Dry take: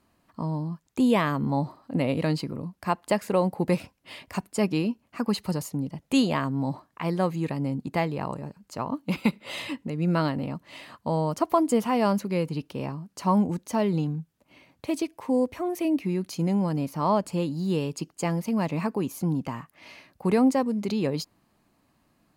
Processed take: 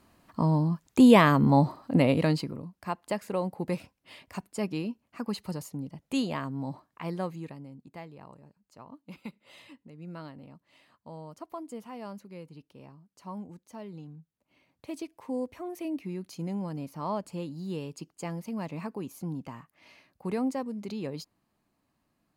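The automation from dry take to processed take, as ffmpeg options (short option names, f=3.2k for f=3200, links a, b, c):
-af "volume=14dB,afade=t=out:st=1.81:d=0.85:silence=0.251189,afade=t=out:st=7.15:d=0.52:silence=0.281838,afade=t=in:st=14.02:d=1.15:silence=0.354813"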